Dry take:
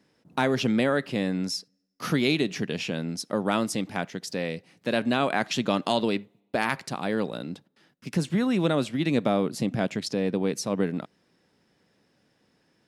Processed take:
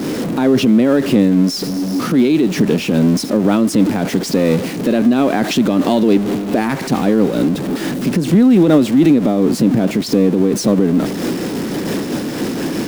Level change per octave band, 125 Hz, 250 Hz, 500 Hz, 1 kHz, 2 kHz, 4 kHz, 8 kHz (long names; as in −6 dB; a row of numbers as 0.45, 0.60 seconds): +12.5, +15.5, +11.5, +7.0, +5.0, +7.5, +11.0 decibels